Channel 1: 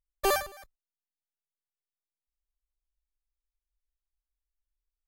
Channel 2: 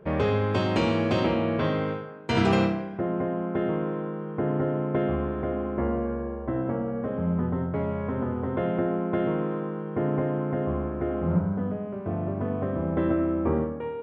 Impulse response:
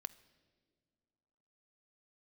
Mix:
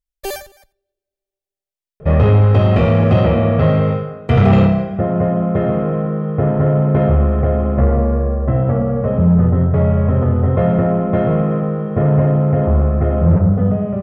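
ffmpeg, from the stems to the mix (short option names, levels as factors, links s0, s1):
-filter_complex "[0:a]equalizer=f=1200:t=o:w=0.58:g=-14,volume=0.891,asplit=3[s0][s1][s2];[s1]volume=0.15[s3];[s2]volume=0.0841[s4];[1:a]acrossover=split=3100[s5][s6];[s6]acompressor=threshold=0.002:ratio=4:attack=1:release=60[s7];[s5][s7]amix=inputs=2:normalize=0,lowshelf=f=330:g=12,aecho=1:1:1.6:0.75,adelay=2000,volume=1.26,asplit=2[s8][s9];[s9]volume=0.473[s10];[2:a]atrim=start_sample=2205[s11];[s3][s10]amix=inputs=2:normalize=0[s12];[s12][s11]afir=irnorm=-1:irlink=0[s13];[s4]aecho=0:1:89:1[s14];[s0][s8][s13][s14]amix=inputs=4:normalize=0,acontrast=61,flanger=delay=0.5:depth=3:regen=-72:speed=1.3:shape=triangular"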